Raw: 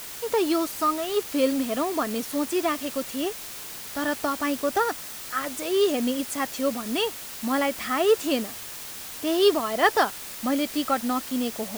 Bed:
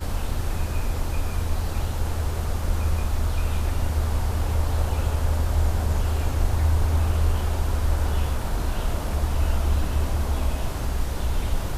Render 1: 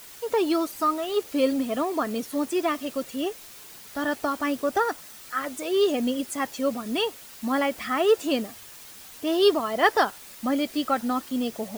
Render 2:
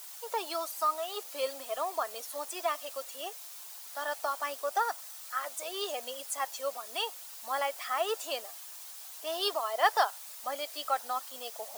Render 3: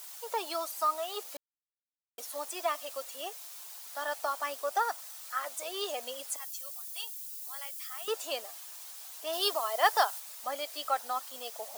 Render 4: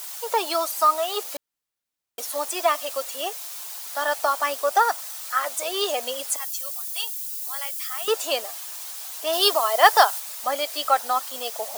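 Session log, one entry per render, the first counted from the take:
denoiser 8 dB, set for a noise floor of -38 dBFS
HPF 660 Hz 24 dB/oct; bell 2000 Hz -7.5 dB 1.8 oct
1.37–2.18 mute; 6.36–8.08 differentiator; 9.33–10.2 high shelf 5500 Hz +6 dB
gain +10.5 dB

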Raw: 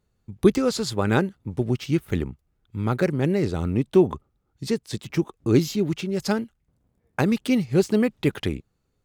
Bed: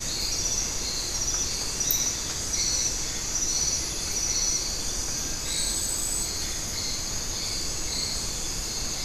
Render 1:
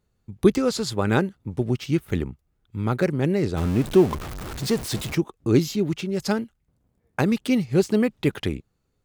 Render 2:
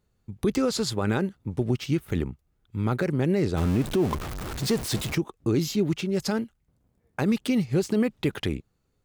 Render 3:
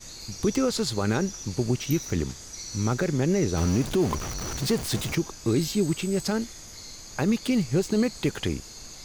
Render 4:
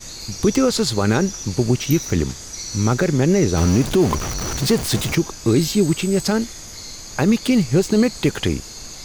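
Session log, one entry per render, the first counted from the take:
3.57–5.15 zero-crossing step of -27.5 dBFS
limiter -15 dBFS, peak gain reduction 11 dB
add bed -12.5 dB
gain +7.5 dB

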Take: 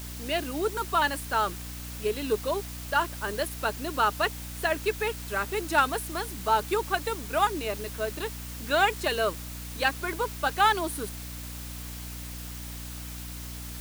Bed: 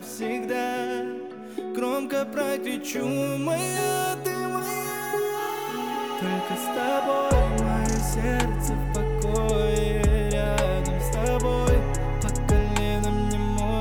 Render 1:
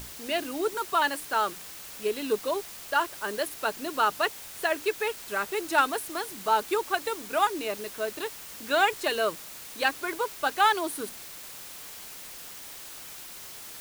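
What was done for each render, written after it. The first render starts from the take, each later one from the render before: notches 60/120/180/240/300 Hz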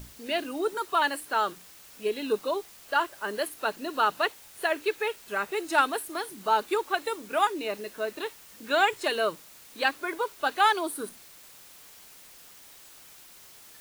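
noise print and reduce 8 dB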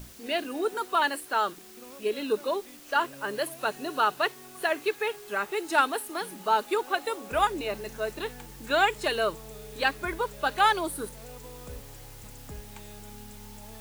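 add bed -22 dB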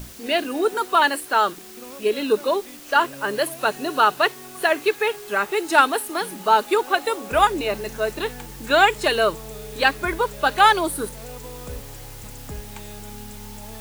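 gain +7.5 dB

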